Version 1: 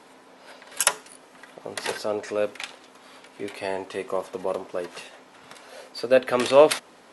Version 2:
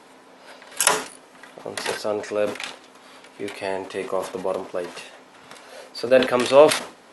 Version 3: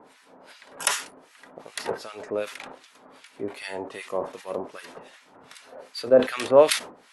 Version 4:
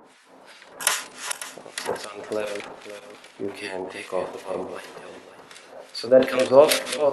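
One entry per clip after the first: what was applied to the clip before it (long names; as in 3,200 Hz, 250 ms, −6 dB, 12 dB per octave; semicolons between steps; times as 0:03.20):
level that may fall only so fast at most 130 dB per second; level +2 dB
two-band tremolo in antiphase 2.6 Hz, depth 100%, crossover 1,300 Hz
feedback delay that plays each chunk backwards 273 ms, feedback 50%, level −8 dB; tape wow and flutter 47 cents; hum removal 48.45 Hz, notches 22; level +2 dB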